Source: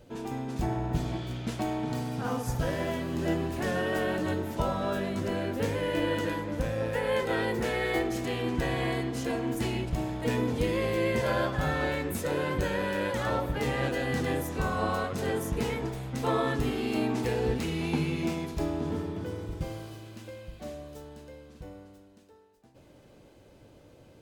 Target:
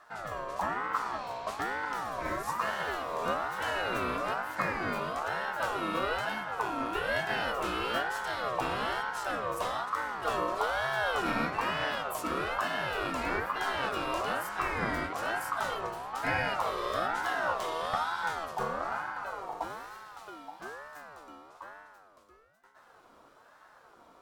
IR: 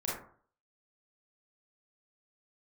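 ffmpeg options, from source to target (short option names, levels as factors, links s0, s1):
-af "aeval=exprs='val(0)*sin(2*PI*1000*n/s+1000*0.2/1.1*sin(2*PI*1.1*n/s))':c=same"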